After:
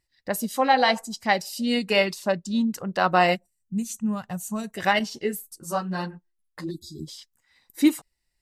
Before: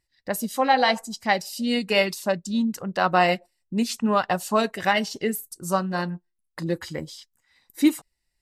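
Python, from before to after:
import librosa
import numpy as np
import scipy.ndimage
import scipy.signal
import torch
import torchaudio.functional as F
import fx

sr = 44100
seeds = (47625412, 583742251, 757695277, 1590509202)

y = fx.spec_erase(x, sr, start_s=6.69, length_s=0.39, low_hz=430.0, high_hz=3300.0)
y = fx.high_shelf(y, sr, hz=8900.0, db=-8.5, at=(1.96, 2.51))
y = fx.spec_box(y, sr, start_s=3.36, length_s=1.39, low_hz=220.0, high_hz=5700.0, gain_db=-15)
y = fx.ensemble(y, sr, at=(4.99, 7.0))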